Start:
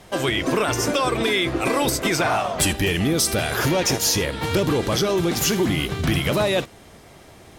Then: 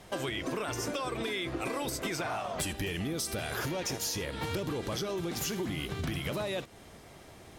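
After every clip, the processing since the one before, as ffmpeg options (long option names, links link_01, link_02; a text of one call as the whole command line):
ffmpeg -i in.wav -af "acompressor=threshold=-26dB:ratio=6,volume=-5.5dB" out.wav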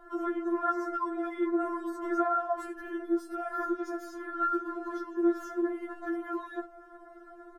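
ffmpeg -i in.wav -af "firequalizer=gain_entry='entry(1100,0);entry(1500,11);entry(2300,-26);entry(6500,-24)':delay=0.05:min_phase=1,afftfilt=real='re*4*eq(mod(b,16),0)':imag='im*4*eq(mod(b,16),0)':win_size=2048:overlap=0.75,volume=4.5dB" out.wav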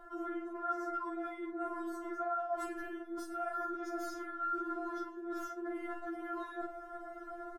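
ffmpeg -i in.wav -af "areverse,acompressor=threshold=-40dB:ratio=6,areverse,aecho=1:1:13|49:0.447|0.398,volume=3dB" out.wav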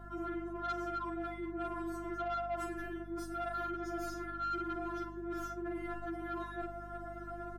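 ffmpeg -i in.wav -af "asoftclip=type=tanh:threshold=-33dB,aeval=exprs='val(0)+0.00282*(sin(2*PI*50*n/s)+sin(2*PI*2*50*n/s)/2+sin(2*PI*3*50*n/s)/3+sin(2*PI*4*50*n/s)/4+sin(2*PI*5*50*n/s)/5)':channel_layout=same,volume=1.5dB" out.wav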